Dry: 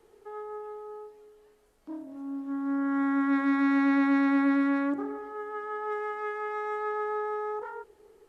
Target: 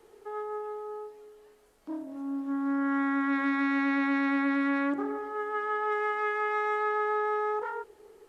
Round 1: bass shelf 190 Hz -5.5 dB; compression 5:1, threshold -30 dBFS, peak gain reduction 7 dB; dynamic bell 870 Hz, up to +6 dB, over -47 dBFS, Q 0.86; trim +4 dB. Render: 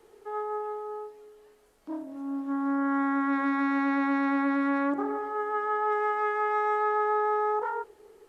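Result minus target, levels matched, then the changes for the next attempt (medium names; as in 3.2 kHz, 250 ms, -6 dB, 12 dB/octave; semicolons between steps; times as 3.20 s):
2 kHz band -3.0 dB
change: dynamic bell 2.6 kHz, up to +6 dB, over -47 dBFS, Q 0.86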